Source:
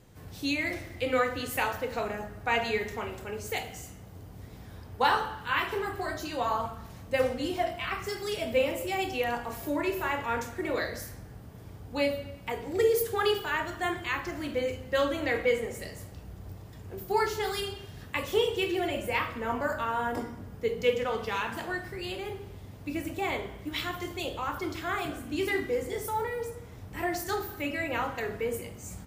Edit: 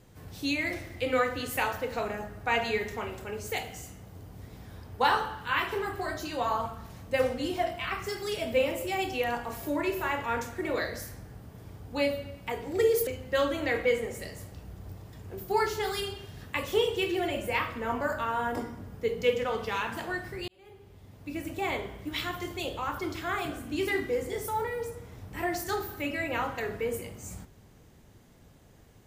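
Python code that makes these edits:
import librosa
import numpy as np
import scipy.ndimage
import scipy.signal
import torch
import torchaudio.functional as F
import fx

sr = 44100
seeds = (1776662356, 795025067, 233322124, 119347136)

y = fx.edit(x, sr, fx.cut(start_s=13.07, length_s=1.6),
    fx.fade_in_span(start_s=22.08, length_s=1.18), tone=tone)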